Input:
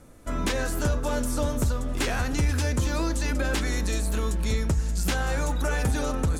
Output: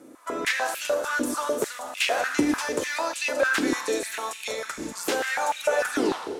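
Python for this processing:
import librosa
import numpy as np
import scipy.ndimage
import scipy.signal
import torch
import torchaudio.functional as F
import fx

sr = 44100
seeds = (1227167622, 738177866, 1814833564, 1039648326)

y = fx.tape_stop_end(x, sr, length_s=0.45)
y = fx.rev_schroeder(y, sr, rt60_s=1.8, comb_ms=27, drr_db=6.5)
y = fx.filter_held_highpass(y, sr, hz=6.7, low_hz=310.0, high_hz=2600.0)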